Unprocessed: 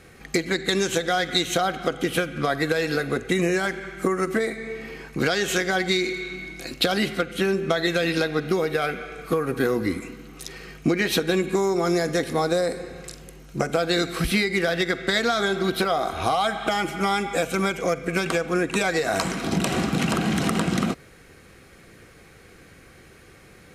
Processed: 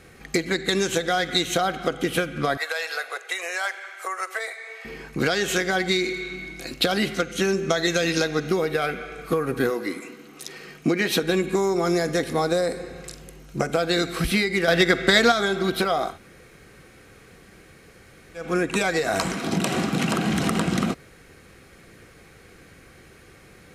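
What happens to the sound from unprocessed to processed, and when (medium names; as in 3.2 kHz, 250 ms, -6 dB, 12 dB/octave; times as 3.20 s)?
2.57–4.85 s: inverse Chebyshev high-pass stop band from 240 Hz, stop band 50 dB
7.14–8.51 s: peaking EQ 6.3 kHz +12.5 dB 0.49 oct
9.69–11.22 s: high-pass 410 Hz -> 99 Hz
14.68–15.32 s: gain +5.5 dB
16.11–18.42 s: room tone, crossfade 0.16 s
19.35–20.26 s: high-pass 110 Hz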